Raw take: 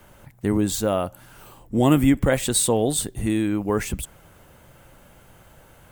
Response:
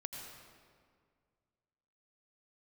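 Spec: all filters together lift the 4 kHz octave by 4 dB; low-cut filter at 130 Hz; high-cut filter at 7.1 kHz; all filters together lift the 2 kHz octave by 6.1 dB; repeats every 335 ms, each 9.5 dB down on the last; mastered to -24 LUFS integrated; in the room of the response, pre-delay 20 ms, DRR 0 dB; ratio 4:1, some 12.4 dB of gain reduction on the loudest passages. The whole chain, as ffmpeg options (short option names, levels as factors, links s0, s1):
-filter_complex "[0:a]highpass=130,lowpass=7100,equalizer=f=2000:t=o:g=7,equalizer=f=4000:t=o:g=3,acompressor=threshold=0.0398:ratio=4,aecho=1:1:335|670|1005|1340:0.335|0.111|0.0365|0.012,asplit=2[s0][s1];[1:a]atrim=start_sample=2205,adelay=20[s2];[s1][s2]afir=irnorm=-1:irlink=0,volume=1.19[s3];[s0][s3]amix=inputs=2:normalize=0,volume=1.78"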